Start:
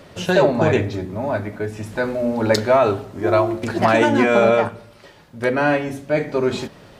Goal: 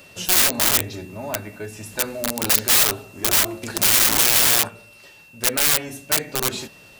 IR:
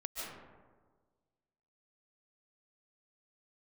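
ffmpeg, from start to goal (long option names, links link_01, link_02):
-af "aeval=exprs='(mod(4.22*val(0)+1,2)-1)/4.22':channel_layout=same,crystalizer=i=4:c=0,aeval=exprs='val(0)+0.0112*sin(2*PI*2700*n/s)':channel_layout=same,volume=-8dB"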